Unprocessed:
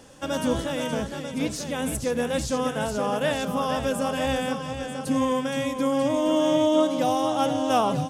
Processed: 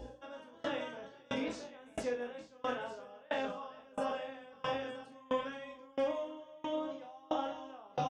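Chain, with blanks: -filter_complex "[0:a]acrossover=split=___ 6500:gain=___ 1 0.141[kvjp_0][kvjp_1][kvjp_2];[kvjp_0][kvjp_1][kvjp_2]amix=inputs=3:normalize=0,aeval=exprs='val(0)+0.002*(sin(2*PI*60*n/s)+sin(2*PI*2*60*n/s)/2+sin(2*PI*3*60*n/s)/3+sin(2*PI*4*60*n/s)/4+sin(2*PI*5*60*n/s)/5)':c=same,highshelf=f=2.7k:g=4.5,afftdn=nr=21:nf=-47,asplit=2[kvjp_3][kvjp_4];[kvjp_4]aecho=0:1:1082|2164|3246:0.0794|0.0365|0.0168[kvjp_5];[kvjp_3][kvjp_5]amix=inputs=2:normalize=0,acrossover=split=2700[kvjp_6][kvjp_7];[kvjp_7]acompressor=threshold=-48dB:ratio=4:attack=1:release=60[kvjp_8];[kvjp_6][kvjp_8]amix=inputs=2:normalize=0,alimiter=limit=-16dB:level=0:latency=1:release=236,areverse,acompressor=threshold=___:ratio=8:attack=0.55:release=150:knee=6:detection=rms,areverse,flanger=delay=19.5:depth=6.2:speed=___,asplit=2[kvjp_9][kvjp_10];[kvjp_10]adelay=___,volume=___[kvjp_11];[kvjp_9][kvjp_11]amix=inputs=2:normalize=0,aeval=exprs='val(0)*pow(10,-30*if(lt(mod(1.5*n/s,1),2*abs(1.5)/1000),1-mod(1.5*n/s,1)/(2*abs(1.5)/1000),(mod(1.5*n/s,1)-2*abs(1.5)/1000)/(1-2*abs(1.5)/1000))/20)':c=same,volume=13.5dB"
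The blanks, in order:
270, 0.0794, -37dB, 0.51, 41, -5dB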